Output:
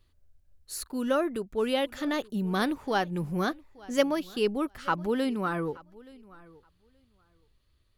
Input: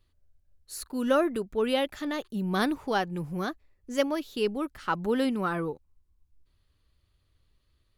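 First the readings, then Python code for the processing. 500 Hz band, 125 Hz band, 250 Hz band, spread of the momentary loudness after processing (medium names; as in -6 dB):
-0.5 dB, +1.0 dB, 0.0 dB, 7 LU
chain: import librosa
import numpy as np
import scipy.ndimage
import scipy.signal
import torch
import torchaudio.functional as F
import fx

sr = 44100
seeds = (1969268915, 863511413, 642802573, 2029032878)

p1 = fx.rider(x, sr, range_db=10, speed_s=0.5)
y = p1 + fx.echo_feedback(p1, sr, ms=875, feedback_pct=15, wet_db=-22.5, dry=0)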